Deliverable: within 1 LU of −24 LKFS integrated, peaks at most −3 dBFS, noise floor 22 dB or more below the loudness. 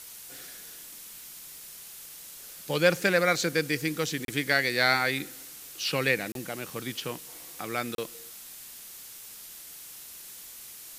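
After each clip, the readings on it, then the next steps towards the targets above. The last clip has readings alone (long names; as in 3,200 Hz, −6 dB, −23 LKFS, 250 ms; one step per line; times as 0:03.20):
number of dropouts 3; longest dropout 32 ms; background noise floor −46 dBFS; target noise floor −50 dBFS; integrated loudness −27.5 LKFS; sample peak −7.0 dBFS; target loudness −24.0 LKFS
→ repair the gap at 0:04.25/0:06.32/0:07.95, 32 ms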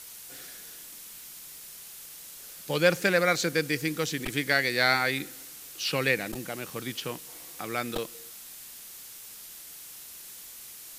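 number of dropouts 0; background noise floor −46 dBFS; target noise floor −50 dBFS
→ noise reduction from a noise print 6 dB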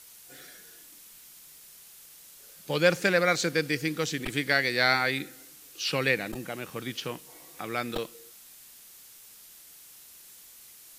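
background noise floor −52 dBFS; integrated loudness −27.5 LKFS; sample peak −7.0 dBFS; target loudness −24.0 LKFS
→ level +3.5 dB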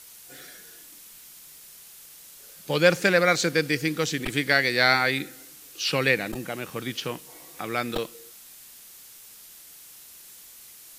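integrated loudness −24.0 LKFS; sample peak −3.5 dBFS; background noise floor −48 dBFS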